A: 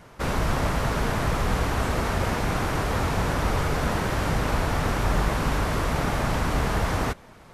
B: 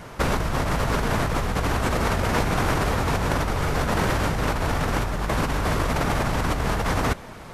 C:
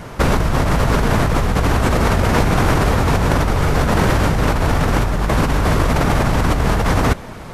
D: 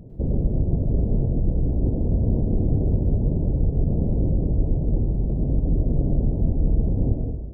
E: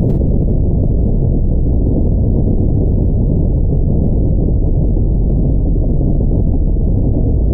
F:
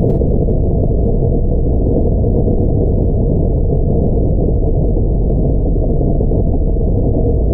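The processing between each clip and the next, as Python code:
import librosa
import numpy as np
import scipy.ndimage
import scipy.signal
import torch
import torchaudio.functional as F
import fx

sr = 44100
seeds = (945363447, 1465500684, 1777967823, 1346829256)

y1 = fx.over_compress(x, sr, threshold_db=-28.0, ratio=-1.0)
y1 = y1 * 10.0 ** (5.0 / 20.0)
y2 = fx.low_shelf(y1, sr, hz=460.0, db=4.0)
y2 = y2 * 10.0 ** (5.0 / 20.0)
y3 = scipy.ndimage.gaussian_filter1d(y2, 20.0, mode='constant')
y3 = fx.rev_plate(y3, sr, seeds[0], rt60_s=0.97, hf_ratio=0.8, predelay_ms=90, drr_db=0.5)
y3 = y3 * 10.0 ** (-6.5 / 20.0)
y4 = fx.env_flatten(y3, sr, amount_pct=100)
y4 = y4 * 10.0 ** (3.5 / 20.0)
y5 = fx.small_body(y4, sr, hz=(470.0, 660.0), ring_ms=30, db=10)
y5 = y5 * 10.0 ** (-1.0 / 20.0)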